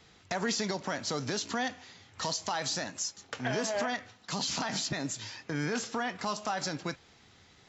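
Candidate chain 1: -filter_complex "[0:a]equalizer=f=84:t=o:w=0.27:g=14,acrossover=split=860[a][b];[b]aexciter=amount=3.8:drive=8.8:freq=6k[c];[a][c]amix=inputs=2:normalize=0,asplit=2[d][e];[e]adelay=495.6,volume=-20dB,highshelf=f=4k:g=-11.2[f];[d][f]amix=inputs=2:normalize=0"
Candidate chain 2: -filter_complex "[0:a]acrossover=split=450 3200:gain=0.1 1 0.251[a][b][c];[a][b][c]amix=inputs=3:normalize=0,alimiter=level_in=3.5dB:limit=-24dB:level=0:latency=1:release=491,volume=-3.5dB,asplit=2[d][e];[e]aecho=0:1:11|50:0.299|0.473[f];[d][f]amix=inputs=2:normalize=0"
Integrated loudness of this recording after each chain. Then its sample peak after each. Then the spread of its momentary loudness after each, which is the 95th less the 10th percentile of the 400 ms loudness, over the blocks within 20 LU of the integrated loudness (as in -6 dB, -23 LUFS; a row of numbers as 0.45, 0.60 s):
-28.0, -39.0 LUFS; -9.5, -24.0 dBFS; 10, 7 LU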